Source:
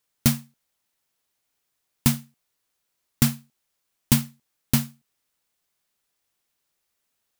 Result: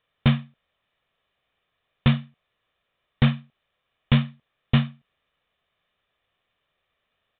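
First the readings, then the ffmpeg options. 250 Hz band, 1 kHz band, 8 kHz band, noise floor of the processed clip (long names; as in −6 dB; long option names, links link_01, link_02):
+1.0 dB, +4.0 dB, below −40 dB, −78 dBFS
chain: -filter_complex "[0:a]aecho=1:1:1.7:0.42,asplit=2[link_01][link_02];[link_02]aeval=exprs='0.708*sin(PI/2*3.98*val(0)/0.708)':channel_layout=same,volume=-11.5dB[link_03];[link_01][link_03]amix=inputs=2:normalize=0,aresample=8000,aresample=44100,volume=-1.5dB"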